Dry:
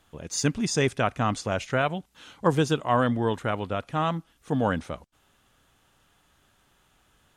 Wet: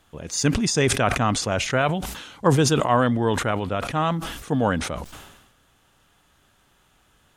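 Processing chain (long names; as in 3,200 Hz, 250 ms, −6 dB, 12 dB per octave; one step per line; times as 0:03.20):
level that may fall only so fast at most 54 dB per second
level +3 dB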